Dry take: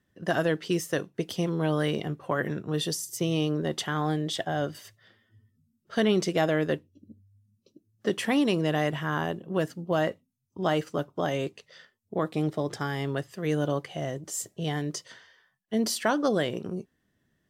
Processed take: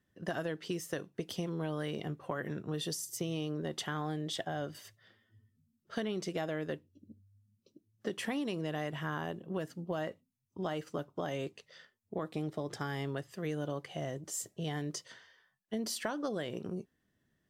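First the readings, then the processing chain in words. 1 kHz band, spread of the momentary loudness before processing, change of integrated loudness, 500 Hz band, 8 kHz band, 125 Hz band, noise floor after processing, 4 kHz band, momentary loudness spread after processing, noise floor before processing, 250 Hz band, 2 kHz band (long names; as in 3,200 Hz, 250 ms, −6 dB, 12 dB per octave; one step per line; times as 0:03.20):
−9.5 dB, 9 LU, −9.5 dB, −10.0 dB, −6.5 dB, −8.5 dB, −80 dBFS, −8.5 dB, 7 LU, −75 dBFS, −9.5 dB, −9.5 dB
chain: downward compressor, threshold −28 dBFS, peak gain reduction 9 dB
level −4.5 dB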